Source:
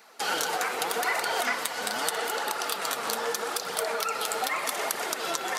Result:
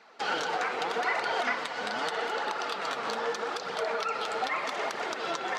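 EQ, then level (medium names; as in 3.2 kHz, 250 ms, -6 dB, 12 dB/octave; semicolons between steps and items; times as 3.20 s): distance through air 160 m; 0.0 dB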